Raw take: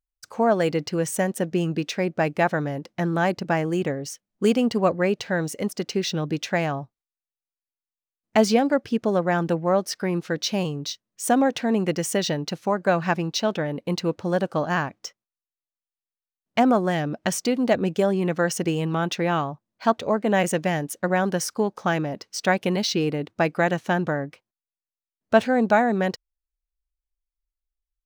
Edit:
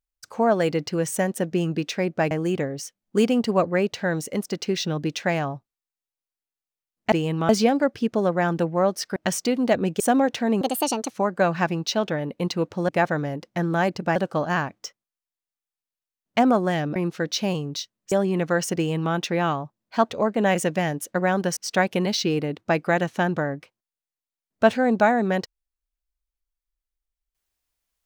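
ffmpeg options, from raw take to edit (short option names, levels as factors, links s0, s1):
-filter_complex "[0:a]asplit=13[s0][s1][s2][s3][s4][s5][s6][s7][s8][s9][s10][s11][s12];[s0]atrim=end=2.312[s13];[s1]atrim=start=3.578:end=8.392[s14];[s2]atrim=start=18.648:end=19.022[s15];[s3]atrim=start=8.388:end=10.062[s16];[s4]atrim=start=17.158:end=18.002[s17];[s5]atrim=start=11.218:end=11.834[s18];[s6]atrim=start=11.83:end=12.58,asetpts=PTS-STARTPTS,asetrate=66591,aresample=44100[s19];[s7]atrim=start=12.576:end=14.362[s20];[s8]atrim=start=2.308:end=3.582[s21];[s9]atrim=start=14.358:end=17.162[s22];[s10]atrim=start=10.058:end=11.222[s23];[s11]atrim=start=17.998:end=21.452[s24];[s12]atrim=start=22.268[s25];[s13][s14]acrossfade=d=0.004:c1=hsin:c2=hsin[s26];[s26][s15]acrossfade=d=0.004:c1=hsin:c2=hsin[s27];[s27][s16]acrossfade=d=0.004:c1=hsin:c2=hsin[s28];[s28][s17]acrossfade=d=0.004:c1=hsin:c2=hsin[s29];[s29][s18]acrossfade=d=0.004:c1=hsin:c2=hsin[s30];[s30][s19]acrossfade=d=0.004:c1=hsin:c2=hsin[s31];[s31][s20]acrossfade=d=0.004:c1=hsin:c2=hsin[s32];[s32][s21]acrossfade=d=0.004:c1=hsin:c2=hsin[s33];[s33][s22]acrossfade=d=0.004:c1=hsin:c2=hsin[s34];[s34][s23]acrossfade=d=0.004:c1=hsin:c2=hsin[s35];[s35][s24]acrossfade=d=0.004:c1=hsin:c2=hsin[s36];[s36][s25]acrossfade=d=0.004:c1=hsin:c2=hsin"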